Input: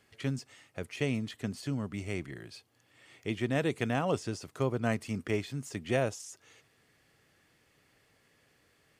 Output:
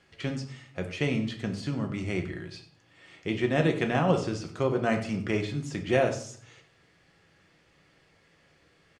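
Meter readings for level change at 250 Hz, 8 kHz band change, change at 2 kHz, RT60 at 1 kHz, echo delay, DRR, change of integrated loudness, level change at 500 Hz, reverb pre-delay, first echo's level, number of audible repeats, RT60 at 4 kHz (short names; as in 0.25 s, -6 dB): +5.0 dB, 0.0 dB, +5.0 dB, 0.50 s, 95 ms, 3.5 dB, +5.0 dB, +5.5 dB, 5 ms, -16.0 dB, 1, 0.40 s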